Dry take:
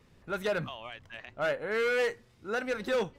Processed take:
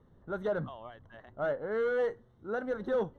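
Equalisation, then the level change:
moving average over 18 samples
0.0 dB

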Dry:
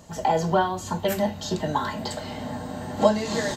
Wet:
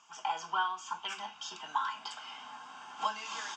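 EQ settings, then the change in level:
flat-topped band-pass 2,500 Hz, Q 0.53
high-frequency loss of the air 51 metres
phaser with its sweep stopped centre 2,800 Hz, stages 8
0.0 dB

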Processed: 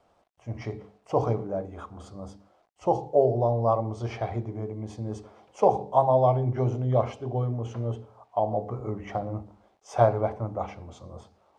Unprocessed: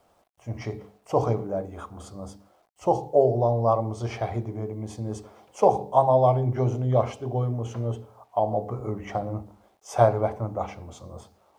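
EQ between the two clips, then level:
high-frequency loss of the air 70 metres
−1.5 dB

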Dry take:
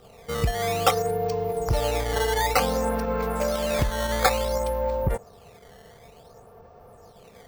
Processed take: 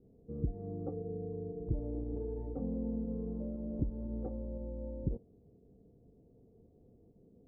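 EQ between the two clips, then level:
transistor ladder low-pass 340 Hz, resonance 60%
0.0 dB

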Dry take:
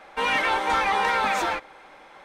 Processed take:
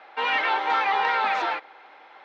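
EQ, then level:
loudspeaker in its box 500–4,000 Hz, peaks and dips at 560 Hz −7 dB, 1,100 Hz −5 dB, 1,600 Hz −3 dB, 2,300 Hz −4 dB, 3,400 Hz −4 dB
+3.0 dB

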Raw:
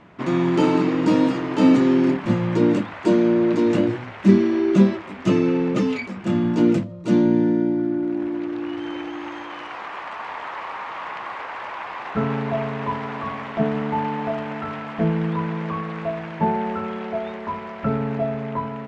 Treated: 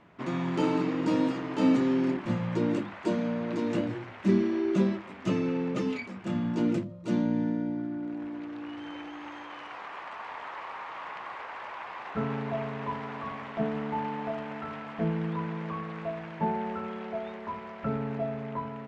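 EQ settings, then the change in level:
mains-hum notches 50/100/150/200/250/300/350 Hz
−8.0 dB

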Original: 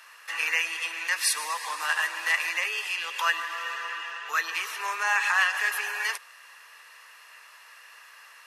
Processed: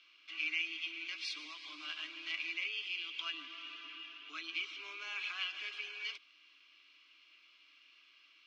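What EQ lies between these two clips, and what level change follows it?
formant filter i
low-pass filter 5,200 Hz 24 dB per octave
phaser with its sweep stopped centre 490 Hz, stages 6
+11.0 dB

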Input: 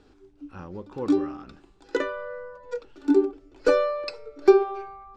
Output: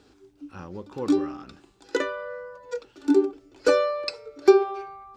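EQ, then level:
high-pass filter 60 Hz 12 dB per octave
high-shelf EQ 3,800 Hz +9 dB
0.0 dB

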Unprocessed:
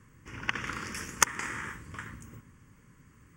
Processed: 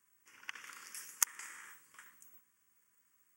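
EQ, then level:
first difference
low-shelf EQ 110 Hz −12 dB
parametric band 4,900 Hz −8 dB 2.8 octaves
+1.5 dB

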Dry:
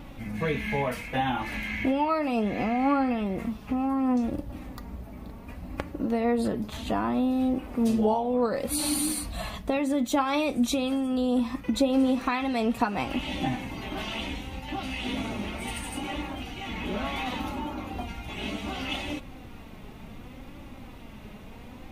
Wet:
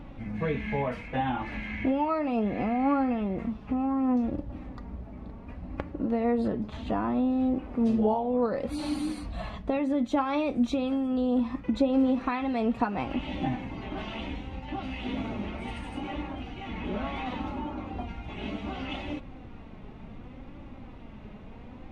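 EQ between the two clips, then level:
head-to-tape spacing loss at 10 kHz 24 dB
0.0 dB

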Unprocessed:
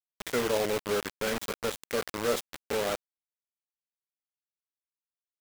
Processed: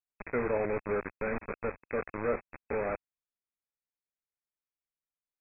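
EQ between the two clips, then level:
linear-phase brick-wall low-pass 2,600 Hz
low-shelf EQ 79 Hz +9 dB
−2.5 dB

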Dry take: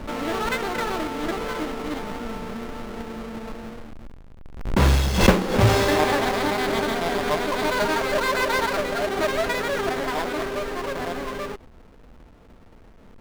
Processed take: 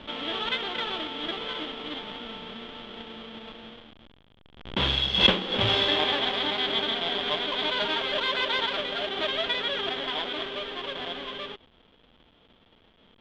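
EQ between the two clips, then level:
low-pass with resonance 3,300 Hz, resonance Q 11
low-shelf EQ 71 Hz −8.5 dB
low-shelf EQ 150 Hz −4 dB
−8.0 dB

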